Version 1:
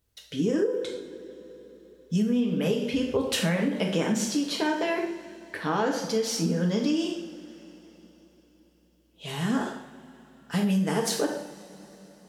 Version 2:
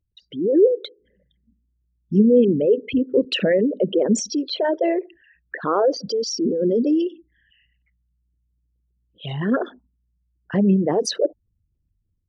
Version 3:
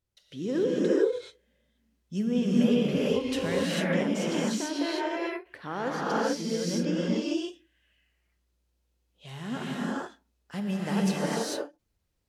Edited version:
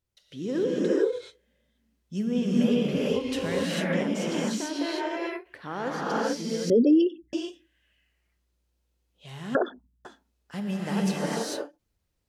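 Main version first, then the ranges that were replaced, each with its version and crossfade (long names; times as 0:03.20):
3
0:06.70–0:07.33: punch in from 2
0:09.55–0:10.05: punch in from 2
not used: 1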